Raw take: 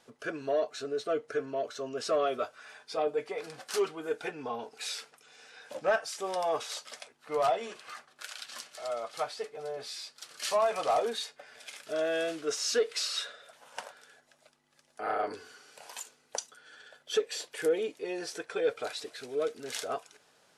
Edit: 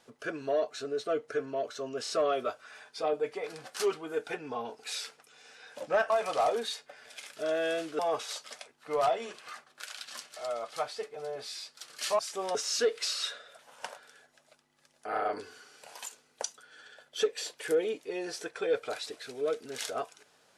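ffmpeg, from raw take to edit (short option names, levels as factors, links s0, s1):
-filter_complex "[0:a]asplit=7[s0][s1][s2][s3][s4][s5][s6];[s0]atrim=end=2.062[s7];[s1]atrim=start=2.028:end=2.062[s8];[s2]atrim=start=2.028:end=6.042[s9];[s3]atrim=start=10.598:end=12.492[s10];[s4]atrim=start=6.398:end=10.602[s11];[s5]atrim=start=6.038:end=6.402[s12];[s6]atrim=start=12.488[s13];[s7][s8]acrossfade=d=0.004:c1=hsin:c2=hsin[s14];[s14][s9]acrossfade=d=0.004:c1=hsin:c2=hsin[s15];[s15][s10]acrossfade=d=0.004:c1=hsin:c2=hsin[s16];[s16][s11]acrossfade=d=0.004:c1=hsin:c2=hsin[s17];[s17][s12]acrossfade=d=0.004:c1=hsin:c2=hsin[s18];[s18][s13]acrossfade=d=0.004:c1=hsin:c2=hsin"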